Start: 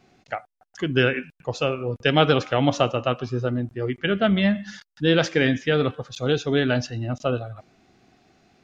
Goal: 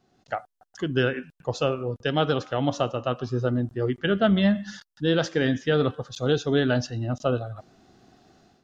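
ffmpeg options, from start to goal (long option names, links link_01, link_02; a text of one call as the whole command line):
ffmpeg -i in.wav -af "equalizer=frequency=2300:width=3.6:gain=-11.5,dynaudnorm=framelen=100:gausssize=5:maxgain=10.5dB,volume=-8dB" out.wav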